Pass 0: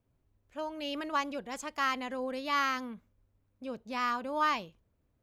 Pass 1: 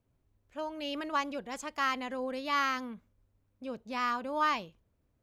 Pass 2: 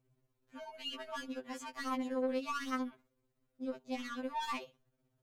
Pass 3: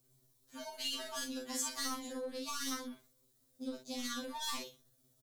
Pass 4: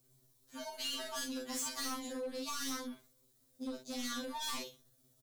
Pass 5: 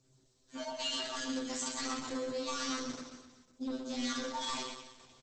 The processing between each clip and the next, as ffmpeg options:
ffmpeg -i in.wav -af "highshelf=frequency=10000:gain=-3" out.wav
ffmpeg -i in.wav -af "asoftclip=type=tanh:threshold=-31.5dB,tremolo=f=16:d=0.54,afftfilt=real='re*2.45*eq(mod(b,6),0)':imag='im*2.45*eq(mod(b,6),0)':win_size=2048:overlap=0.75,volume=2.5dB" out.wav
ffmpeg -i in.wav -filter_complex "[0:a]acrossover=split=140[link_01][link_02];[link_02]acompressor=threshold=-41dB:ratio=5[link_03];[link_01][link_03]amix=inputs=2:normalize=0,aexciter=amount=5.1:drive=5.3:freq=3500,asplit=2[link_04][link_05];[link_05]aecho=0:1:37|53:0.631|0.447[link_06];[link_04][link_06]amix=inputs=2:normalize=0" out.wav
ffmpeg -i in.wav -af "asoftclip=type=hard:threshold=-36.5dB,volume=1.5dB" out.wav
ffmpeg -i in.wav -filter_complex "[0:a]asplit=2[link_01][link_02];[link_02]aecho=0:1:125|250|375|500|625|750:0.501|0.261|0.136|0.0705|0.0366|0.0191[link_03];[link_01][link_03]amix=inputs=2:normalize=0,volume=4dB" -ar 48000 -c:a libopus -b:a 12k out.opus

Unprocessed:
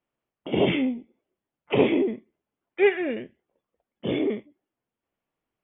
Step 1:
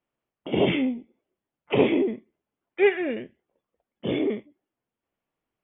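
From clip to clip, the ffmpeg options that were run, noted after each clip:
ffmpeg -i in.wav -af anull out.wav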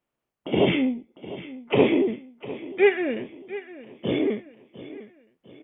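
ffmpeg -i in.wav -af "aecho=1:1:702|1404|2106|2808:0.158|0.0682|0.0293|0.0126,volume=1.5dB" out.wav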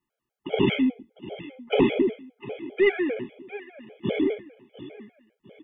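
ffmpeg -i in.wav -af "aeval=exprs='0.501*(cos(1*acos(clip(val(0)/0.501,-1,1)))-cos(1*PI/2))+0.02*(cos(2*acos(clip(val(0)/0.501,-1,1)))-cos(2*PI/2))':channel_layout=same,afftfilt=real='re*gt(sin(2*PI*5*pts/sr)*(1-2*mod(floor(b*sr/1024/420),2)),0)':imag='im*gt(sin(2*PI*5*pts/sr)*(1-2*mod(floor(b*sr/1024/420),2)),0)':win_size=1024:overlap=0.75,volume=2dB" out.wav

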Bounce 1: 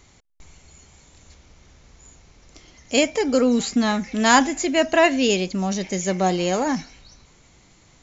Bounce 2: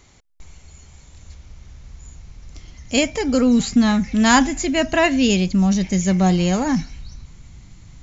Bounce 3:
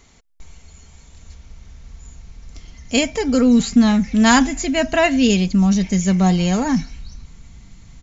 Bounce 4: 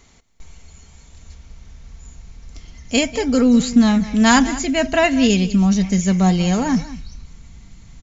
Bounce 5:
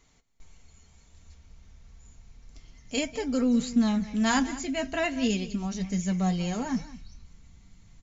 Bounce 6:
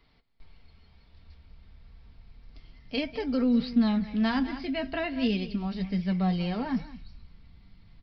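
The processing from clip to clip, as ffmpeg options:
ffmpeg -i in.wav -af "asubboost=boost=6.5:cutoff=170,volume=1dB" out.wav
ffmpeg -i in.wav -af "aecho=1:1:4.4:0.33" out.wav
ffmpeg -i in.wav -af "aecho=1:1:194:0.158" out.wav
ffmpeg -i in.wav -af "flanger=delay=6.3:depth=5:regen=-48:speed=0.33:shape=triangular,volume=-7.5dB" out.wav
ffmpeg -i in.wav -filter_complex "[0:a]aresample=11025,aresample=44100,acrossover=split=350[link_01][link_02];[link_02]acompressor=threshold=-28dB:ratio=6[link_03];[link_01][link_03]amix=inputs=2:normalize=0" out.wav

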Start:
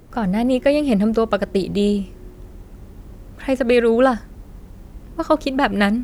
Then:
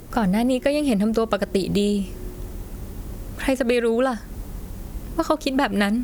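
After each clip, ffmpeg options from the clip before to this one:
ffmpeg -i in.wav -af "aemphasis=mode=production:type=cd,acompressor=threshold=-23dB:ratio=6,volume=5.5dB" out.wav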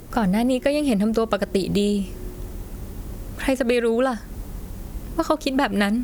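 ffmpeg -i in.wav -af anull out.wav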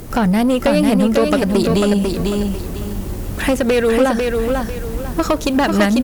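ffmpeg -i in.wav -af "asoftclip=type=tanh:threshold=-17.5dB,aecho=1:1:496|992|1488|1984:0.631|0.196|0.0606|0.0188,volume=8dB" out.wav

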